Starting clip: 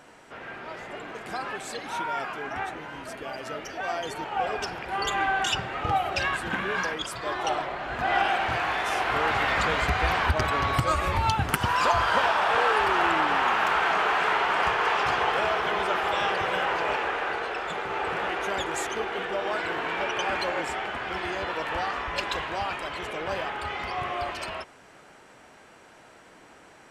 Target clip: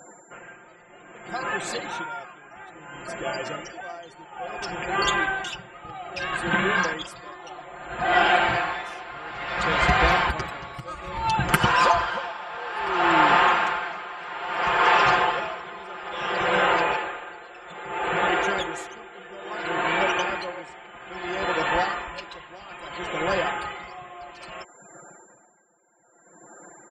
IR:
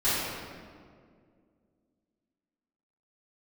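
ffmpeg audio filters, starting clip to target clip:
-af "afftfilt=real='re*gte(hypot(re,im),0.00562)':imag='im*gte(hypot(re,im),0.00562)':win_size=1024:overlap=0.75,highshelf=f=8.9k:g=-6,aecho=1:1:5.7:0.71,aeval=exprs='val(0)+0.00178*sin(2*PI*7300*n/s)':c=same,acontrast=32,aeval=exprs='val(0)*pow(10,-19*(0.5-0.5*cos(2*PI*0.6*n/s))/20)':c=same"

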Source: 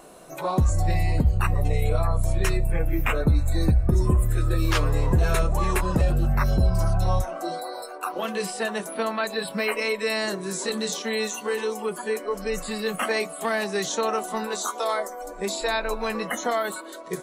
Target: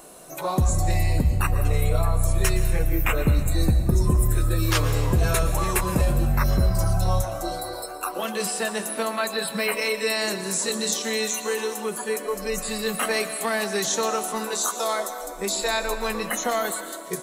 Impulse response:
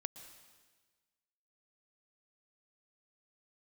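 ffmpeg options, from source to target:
-filter_complex "[0:a]highshelf=f=5.7k:g=10.5[a];[1:a]atrim=start_sample=2205[b];[a][b]afir=irnorm=-1:irlink=0,volume=2.5dB"

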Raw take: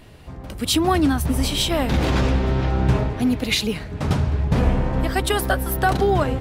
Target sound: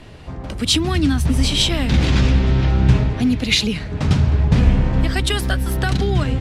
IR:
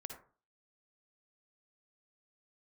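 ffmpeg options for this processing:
-filter_complex "[0:a]lowpass=7.5k,acrossover=split=270|1800[a][b][c];[b]acompressor=threshold=-35dB:ratio=6[d];[a][d][c]amix=inputs=3:normalize=0,volume=5.5dB"

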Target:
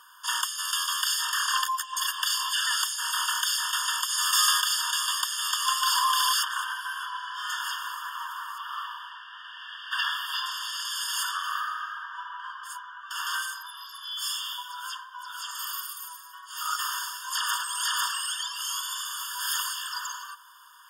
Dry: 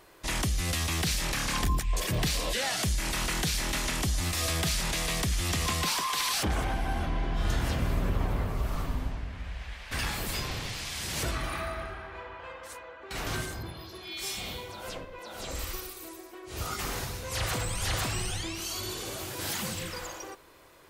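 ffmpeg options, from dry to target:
-filter_complex "[0:a]asplit=3[a][b][c];[a]afade=t=out:st=4.09:d=0.02[d];[b]acontrast=21,afade=t=in:st=4.09:d=0.02,afade=t=out:st=4.6:d=0.02[e];[c]afade=t=in:st=4.6:d=0.02[f];[d][e][f]amix=inputs=3:normalize=0,asettb=1/sr,asplit=3[g][h][i];[g]atrim=end=8.584[j];[h]atrim=start=8.58:end=10.46,asetpts=PTS-STARTPTS,afade=t=in:d=0.004:c=qsin,afade=t=out:st=1.876:d=0.004:c=qsin,highshelf=f=4.9k:t=q:w=1.5:g=-10.5[k];[i]atrim=start=10.456[l];[j][k]acrossfade=d=0.004:c1=hsin:c2=qsin[m];[m][l]acrossfade=d=0.004:c1=qsin:c2=hsin,afftfilt=real='re*eq(mod(floor(b*sr/1024/910),2),1)':imag='im*eq(mod(floor(b*sr/1024/910),2),1)':win_size=1024:overlap=0.75,volume=8dB"

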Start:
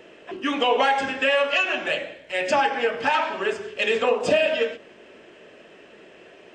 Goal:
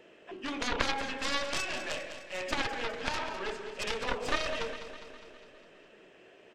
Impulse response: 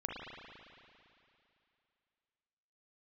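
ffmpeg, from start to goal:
-af "aeval=exprs='0.376*(cos(1*acos(clip(val(0)/0.376,-1,1)))-cos(1*PI/2))+0.188*(cos(2*acos(clip(val(0)/0.376,-1,1)))-cos(2*PI/2))+0.188*(cos(3*acos(clip(val(0)/0.376,-1,1)))-cos(3*PI/2))+0.015*(cos(4*acos(clip(val(0)/0.376,-1,1)))-cos(4*PI/2))+0.0106*(cos(7*acos(clip(val(0)/0.376,-1,1)))-cos(7*PI/2))':c=same,aecho=1:1:204|408|612|816|1020|1224|1428:0.282|0.169|0.101|0.0609|0.0365|0.0219|0.0131,volume=-6dB"

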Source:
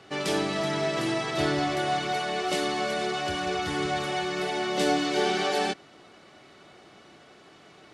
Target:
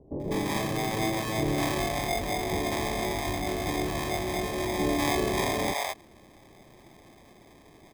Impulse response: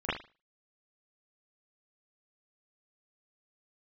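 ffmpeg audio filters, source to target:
-filter_complex "[0:a]acrusher=samples=31:mix=1:aa=0.000001,acrossover=split=600[a][b];[b]adelay=200[c];[a][c]amix=inputs=2:normalize=0"

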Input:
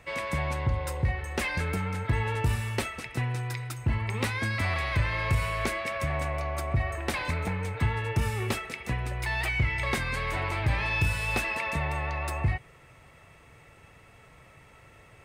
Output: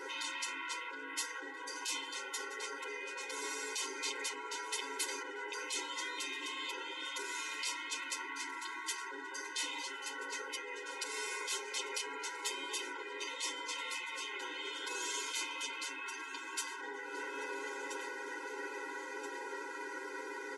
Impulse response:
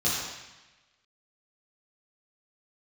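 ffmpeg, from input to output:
-filter_complex "[0:a]asplit=2[a][b];[b]aecho=0:1:984|1968|2952:0.112|0.0494|0.0217[c];[a][c]amix=inputs=2:normalize=0,acompressor=threshold=-34dB:ratio=8,afftfilt=real='re*lt(hypot(re,im),0.01)':imag='im*lt(hypot(re,im),0.01)':win_size=1024:overlap=0.75,asetrate=32667,aresample=44100,bandreject=f=820:w=20,aecho=1:1:7.4:0.92,afftfilt=real='re*eq(mod(floor(b*sr/1024/270),2),1)':imag='im*eq(mod(floor(b*sr/1024/270),2),1)':win_size=1024:overlap=0.75,volume=12.5dB"

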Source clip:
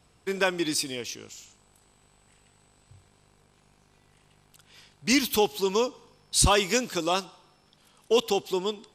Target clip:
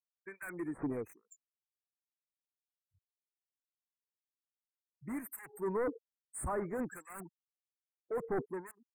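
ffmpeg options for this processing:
-filter_complex "[0:a]afftfilt=real='re*gte(hypot(re,im),0.0251)':imag='im*gte(hypot(re,im),0.0251)':win_size=1024:overlap=0.75,aemphasis=mode=production:type=75fm,areverse,acompressor=threshold=-30dB:ratio=8,areverse,asoftclip=type=tanh:threshold=-35.5dB,adynamicsmooth=sensitivity=5.5:basefreq=7.6k,acrossover=split=1600[a][b];[a]aeval=exprs='val(0)*(1-1/2+1/2*cos(2*PI*1.2*n/s))':c=same[c];[b]aeval=exprs='val(0)*(1-1/2-1/2*cos(2*PI*1.2*n/s))':c=same[d];[c][d]amix=inputs=2:normalize=0,aeval=exprs='0.0133*(abs(mod(val(0)/0.0133+3,4)-2)-1)':c=same,asuperstop=centerf=4200:order=12:qfactor=0.66,volume=8.5dB"

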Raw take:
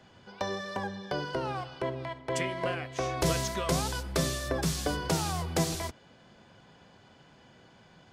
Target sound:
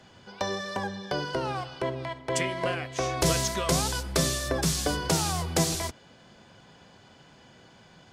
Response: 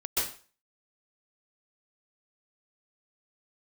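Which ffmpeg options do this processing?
-af "equalizer=f=7.7k:t=o:w=2:g=4.5,volume=2.5dB"

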